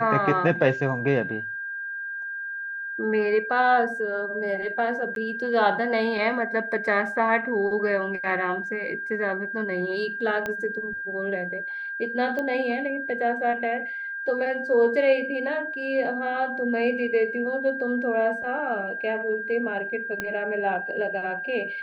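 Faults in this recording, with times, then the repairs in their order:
tone 1600 Hz -30 dBFS
5.15–5.16 gap 12 ms
10.46 pop -16 dBFS
12.39 pop -18 dBFS
20.2 pop -14 dBFS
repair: de-click; notch 1600 Hz, Q 30; interpolate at 5.15, 12 ms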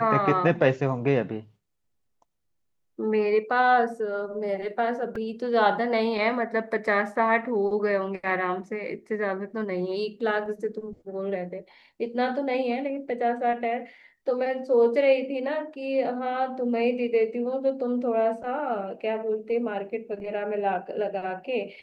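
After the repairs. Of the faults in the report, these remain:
10.46 pop
20.2 pop

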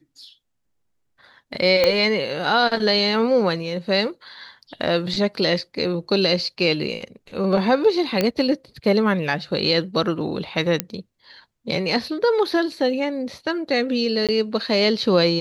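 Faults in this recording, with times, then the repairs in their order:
1.84 pop -4 dBFS
8.21 pop -6 dBFS
10.8 pop -3 dBFS
14.27–14.29 gap 17 ms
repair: de-click; interpolate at 14.27, 17 ms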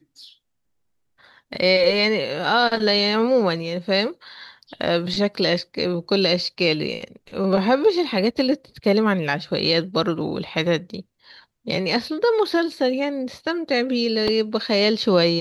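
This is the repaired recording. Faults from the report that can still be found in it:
1.84 pop

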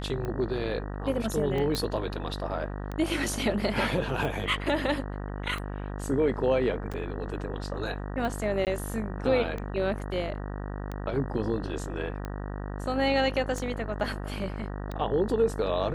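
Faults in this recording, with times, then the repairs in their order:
buzz 50 Hz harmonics 38 -35 dBFS
tick 45 rpm -22 dBFS
1.75 pop -15 dBFS
6.93–6.94 gap 6.8 ms
8.65–8.67 gap 18 ms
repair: de-click; de-hum 50 Hz, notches 38; interpolate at 6.93, 6.8 ms; interpolate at 8.65, 18 ms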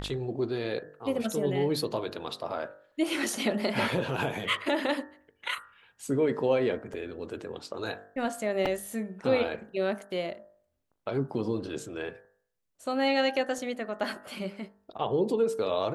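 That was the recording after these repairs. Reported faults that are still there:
none

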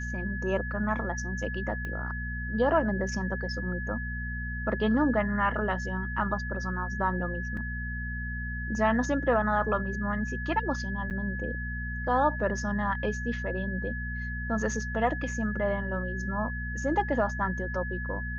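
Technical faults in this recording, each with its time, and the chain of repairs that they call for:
hum 60 Hz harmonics 4 -35 dBFS
tone 1700 Hz -36 dBFS
1.85 pop -24 dBFS
7.57 gap 3.1 ms
11.1–11.11 gap 8.8 ms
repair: de-click; notch 1700 Hz, Q 30; de-hum 60 Hz, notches 4; interpolate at 7.57, 3.1 ms; interpolate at 11.1, 8.8 ms

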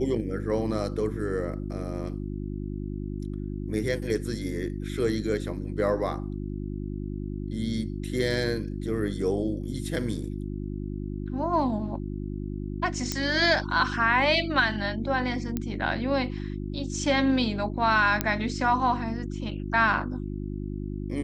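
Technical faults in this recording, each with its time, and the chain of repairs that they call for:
hum 50 Hz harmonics 7 -33 dBFS
13.12 pop -12 dBFS
15.57 pop -15 dBFS
18.21 pop -7 dBFS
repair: de-click; de-hum 50 Hz, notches 7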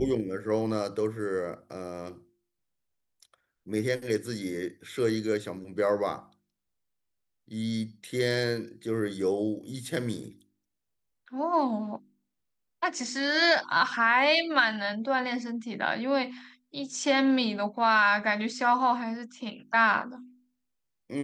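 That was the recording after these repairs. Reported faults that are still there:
none

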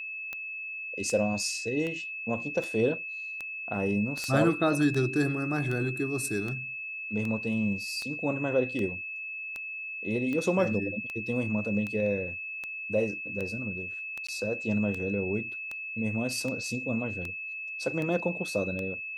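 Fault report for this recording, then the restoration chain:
tick 78 rpm -22 dBFS
tone 2600 Hz -35 dBFS
4.24 pop -18 dBFS
14.27–14.29 gap 15 ms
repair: de-click; notch 2600 Hz, Q 30; interpolate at 14.27, 15 ms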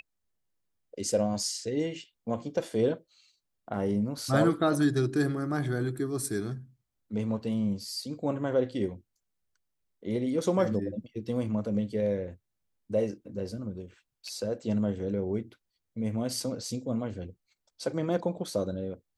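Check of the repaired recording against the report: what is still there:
none

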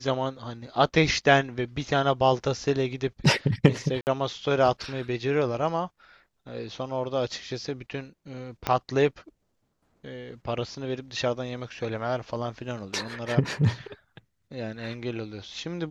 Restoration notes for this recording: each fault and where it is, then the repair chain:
4.01–4.07 gap 59 ms
8.67 pop -11 dBFS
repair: de-click; interpolate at 4.01, 59 ms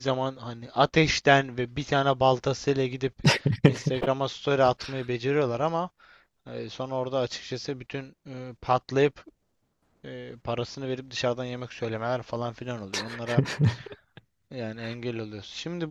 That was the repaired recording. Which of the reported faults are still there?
8.67 pop

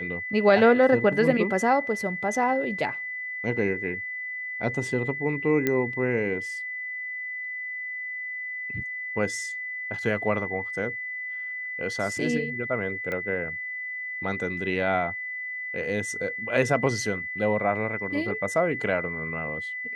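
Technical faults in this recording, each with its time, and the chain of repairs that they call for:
tone 2000 Hz -31 dBFS
5.67 pop -11 dBFS
13.12 pop -19 dBFS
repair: de-click; notch 2000 Hz, Q 30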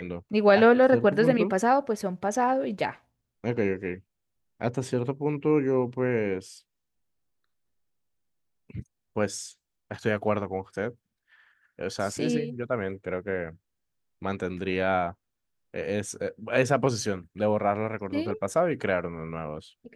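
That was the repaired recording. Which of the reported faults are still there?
5.67 pop

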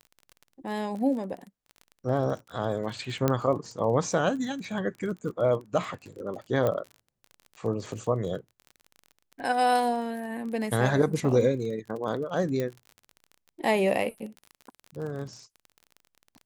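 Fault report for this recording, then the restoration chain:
crackle 30/s -36 dBFS
3.28 pop -10 dBFS
6.67 pop -15 dBFS
12.6 pop -17 dBFS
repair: de-click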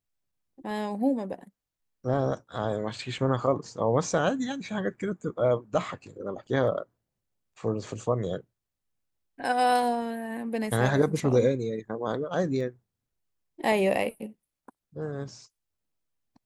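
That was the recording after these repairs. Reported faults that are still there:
6.67 pop
12.6 pop

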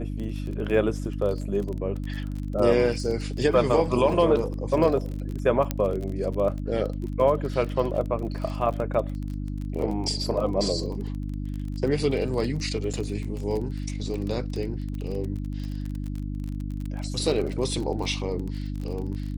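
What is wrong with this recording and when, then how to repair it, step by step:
crackle 25/s -31 dBFS
hum 50 Hz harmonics 6 -31 dBFS
5.71 pop -11 dBFS
12.93–12.94 gap 5.8 ms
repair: de-click; de-hum 50 Hz, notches 6; interpolate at 12.93, 5.8 ms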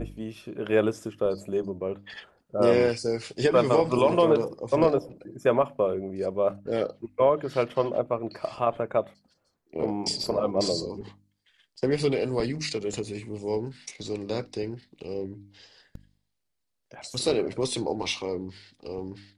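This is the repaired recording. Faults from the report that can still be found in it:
none

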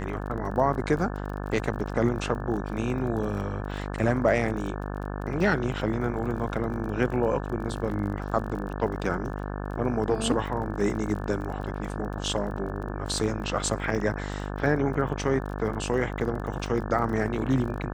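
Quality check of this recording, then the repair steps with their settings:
buzz 50 Hz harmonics 35 -33 dBFS
crackle 30/s -35 dBFS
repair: de-click; de-hum 50 Hz, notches 35

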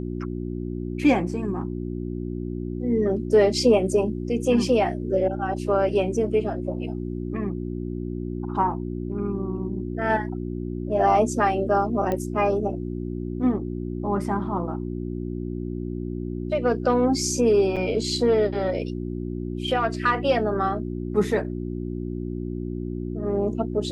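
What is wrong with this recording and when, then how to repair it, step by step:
hum 60 Hz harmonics 6 -30 dBFS
12.12 pop -15 dBFS
17.76–17.77 gap 6.4 ms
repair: de-click; de-hum 60 Hz, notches 6; interpolate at 17.76, 6.4 ms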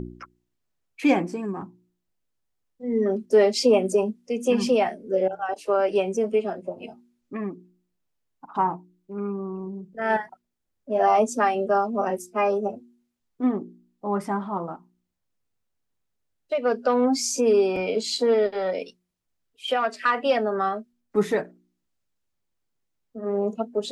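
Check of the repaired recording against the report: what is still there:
none

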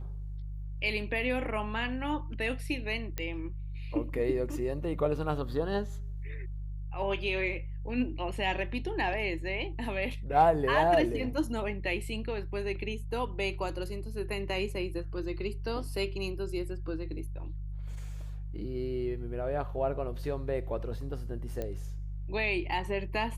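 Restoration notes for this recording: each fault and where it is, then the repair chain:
hum 50 Hz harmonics 3 -38 dBFS
3.18 pop -18 dBFS
21.62 pop -22 dBFS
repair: de-click; de-hum 50 Hz, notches 3

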